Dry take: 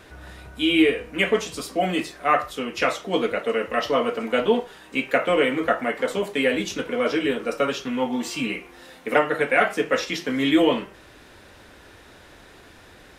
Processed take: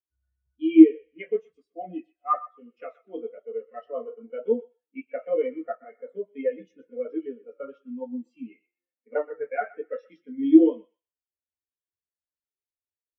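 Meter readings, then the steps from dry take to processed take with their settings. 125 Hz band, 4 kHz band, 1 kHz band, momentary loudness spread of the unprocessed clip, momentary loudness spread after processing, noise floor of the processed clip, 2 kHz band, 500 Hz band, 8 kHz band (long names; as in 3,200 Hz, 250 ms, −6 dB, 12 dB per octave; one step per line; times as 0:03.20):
below −20 dB, below −25 dB, −9.5 dB, 8 LU, 24 LU, below −85 dBFS, −20.0 dB, −5.5 dB, below −40 dB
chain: flanger 1.1 Hz, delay 7.7 ms, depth 7.2 ms, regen −46%
feedback echo with a high-pass in the loop 124 ms, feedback 50%, high-pass 690 Hz, level −7.5 dB
every bin expanded away from the loudest bin 2.5 to 1
level +6 dB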